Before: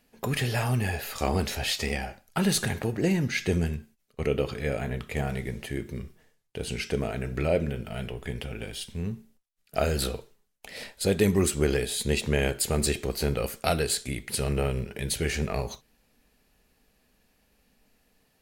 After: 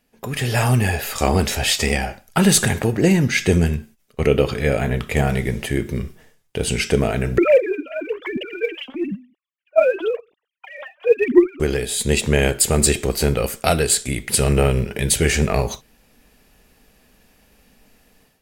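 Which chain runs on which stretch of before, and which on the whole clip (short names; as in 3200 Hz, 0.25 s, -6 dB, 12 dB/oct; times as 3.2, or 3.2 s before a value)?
7.38–11.6 sine-wave speech + phaser 1 Hz, delay 4 ms, feedback 68%
whole clip: notch 4200 Hz, Q 16; AGC gain up to 12.5 dB; dynamic EQ 7900 Hz, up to +6 dB, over -41 dBFS, Q 3.1; gain -1 dB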